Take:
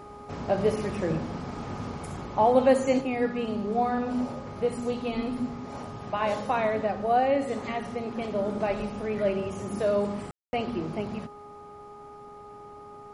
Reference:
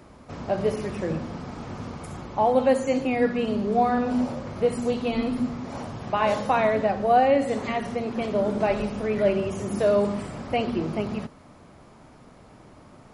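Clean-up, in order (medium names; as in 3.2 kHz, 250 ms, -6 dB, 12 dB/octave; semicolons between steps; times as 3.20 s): de-hum 413.1 Hz, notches 3; room tone fill 10.31–10.53 s; trim 0 dB, from 3.01 s +4.5 dB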